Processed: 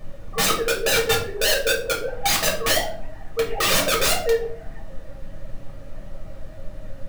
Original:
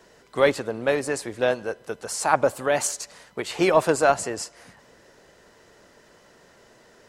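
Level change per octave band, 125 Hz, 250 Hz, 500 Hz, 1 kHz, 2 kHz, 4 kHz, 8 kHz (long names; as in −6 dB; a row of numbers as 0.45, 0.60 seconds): +3.5, −4.5, −1.0, −1.5, +5.0, +13.0, +6.0 decibels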